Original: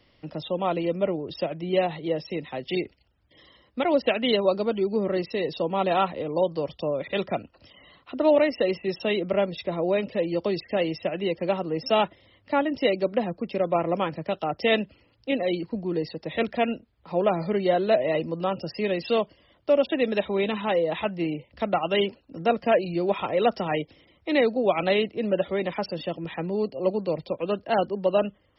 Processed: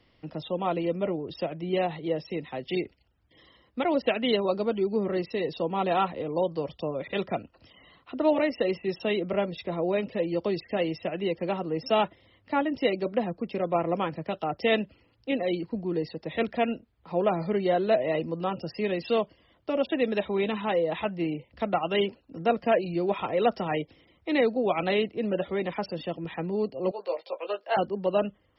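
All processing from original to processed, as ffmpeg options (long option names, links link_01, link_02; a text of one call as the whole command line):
ffmpeg -i in.wav -filter_complex "[0:a]asettb=1/sr,asplit=3[link_01][link_02][link_03];[link_01]atrim=end=26.914[link_04];[link_02]atrim=start=26.91:end=27.77,asetpts=PTS-STARTPTS,afade=type=in:duration=0.004:curve=qsin,afade=type=out:start_time=0.856:duration=0.004:curve=qsin,highpass=frequency=500:width=0.5412,highpass=frequency=500:width=1.3066,asplit=2[link_05][link_06];[link_06]adelay=15,volume=-3.5dB[link_07];[link_05][link_07]amix=inputs=2:normalize=0,atrim=end_sample=37926[link_08];[link_03]atrim=start=27.766[link_09];[link_04][link_08]acrossfade=duration=0.004:curve1=hsin:curve2=qsin[link_10];[link_10][link_09]acrossfade=duration=0.004:curve1=qsin:curve2=hsin,highshelf=frequency=4100:gain=-5.5,bandreject=frequency=580:width=15,volume=-1.5dB" out.wav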